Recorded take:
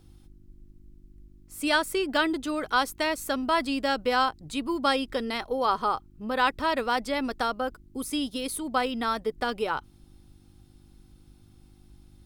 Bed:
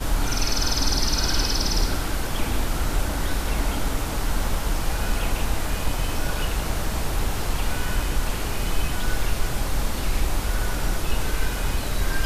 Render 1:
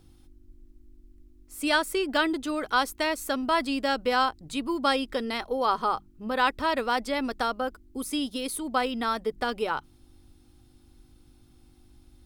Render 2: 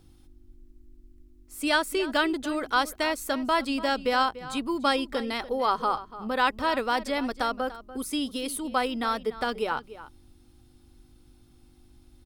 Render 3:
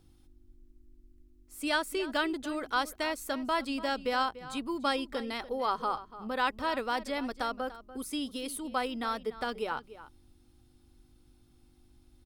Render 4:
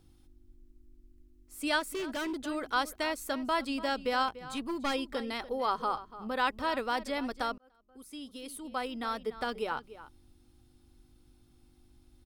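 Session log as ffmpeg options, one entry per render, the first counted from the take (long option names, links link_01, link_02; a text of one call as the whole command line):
ffmpeg -i in.wav -af "bandreject=frequency=50:width_type=h:width=4,bandreject=frequency=100:width_type=h:width=4,bandreject=frequency=150:width_type=h:width=4,bandreject=frequency=200:width_type=h:width=4" out.wav
ffmpeg -i in.wav -filter_complex "[0:a]asplit=2[link_01][link_02];[link_02]adelay=291.5,volume=-15dB,highshelf=frequency=4000:gain=-6.56[link_03];[link_01][link_03]amix=inputs=2:normalize=0" out.wav
ffmpeg -i in.wav -af "volume=-5.5dB" out.wav
ffmpeg -i in.wav -filter_complex "[0:a]asplit=3[link_01][link_02][link_03];[link_01]afade=type=out:start_time=1.79:duration=0.02[link_04];[link_02]volume=32dB,asoftclip=hard,volume=-32dB,afade=type=in:start_time=1.79:duration=0.02,afade=type=out:start_time=2.46:duration=0.02[link_05];[link_03]afade=type=in:start_time=2.46:duration=0.02[link_06];[link_04][link_05][link_06]amix=inputs=3:normalize=0,asettb=1/sr,asplit=3[link_07][link_08][link_09];[link_07]atrim=end=4.284[link_10];[link_08]atrim=start=4.28:end=4.94,asetpts=PTS-STARTPTS,afade=type=in:duration=0.004:curve=qsin,afade=type=out:start_time=0.656:duration=0.004:curve=qsin,aeval=exprs='clip(val(0),-1,0.0224)':channel_layout=same[link_11];[link_09]atrim=start=4.936[link_12];[link_10][link_11]acrossfade=duration=0.004:curve1=hsin:curve2=qsin[link_13];[link_13][link_12]acrossfade=duration=0.004:curve1=qsin:curve2=hsin,asplit=2[link_14][link_15];[link_14]atrim=end=7.58,asetpts=PTS-STARTPTS,afade=type=out:start_time=7.576:duration=0.004:curve=hsin[link_16];[link_15]atrim=start=7.58,asetpts=PTS-STARTPTS,afade=type=in:duration=1.78[link_17];[link_16][link_17]concat=n=2:v=0:a=1" out.wav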